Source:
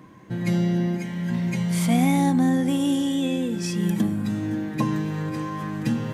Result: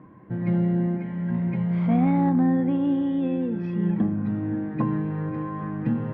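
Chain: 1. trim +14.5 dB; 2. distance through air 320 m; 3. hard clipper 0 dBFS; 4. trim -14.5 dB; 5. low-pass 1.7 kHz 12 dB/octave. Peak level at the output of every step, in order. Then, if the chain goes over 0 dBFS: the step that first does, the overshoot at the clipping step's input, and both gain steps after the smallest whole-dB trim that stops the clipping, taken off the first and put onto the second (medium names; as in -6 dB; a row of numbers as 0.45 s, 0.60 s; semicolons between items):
+4.5 dBFS, +4.0 dBFS, 0.0 dBFS, -14.5 dBFS, -14.5 dBFS; step 1, 4.0 dB; step 1 +10.5 dB, step 4 -10.5 dB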